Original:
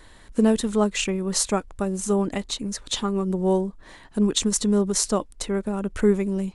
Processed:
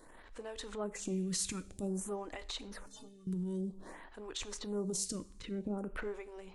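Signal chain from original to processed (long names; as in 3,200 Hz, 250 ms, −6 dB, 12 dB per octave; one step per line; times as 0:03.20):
0:05.15–0:05.77: low-pass filter 1,900 Hz → 3,100 Hz 12 dB per octave
transient designer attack −12 dB, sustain +5 dB
downward compressor, threshold −29 dBFS, peak gain reduction 13 dB
0:02.86–0:03.27: stiff-string resonator 130 Hz, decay 0.28 s, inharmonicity 0.03
coupled-rooms reverb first 0.53 s, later 2.1 s, from −22 dB, DRR 13.5 dB
phaser with staggered stages 0.52 Hz
level −3 dB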